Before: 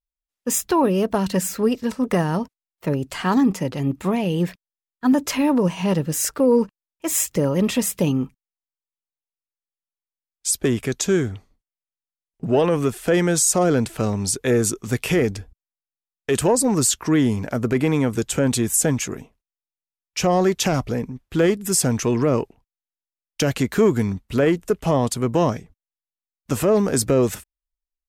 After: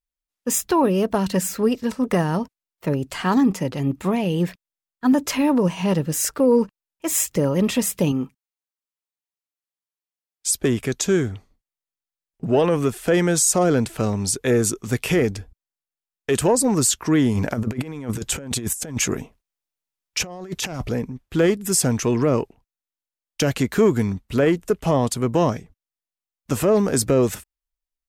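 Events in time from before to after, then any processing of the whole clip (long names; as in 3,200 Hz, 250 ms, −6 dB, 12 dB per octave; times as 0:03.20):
0:08.12–0:10.47: high-pass filter 170 Hz 6 dB per octave
0:17.35–0:20.89: compressor whose output falls as the input rises −25 dBFS, ratio −0.5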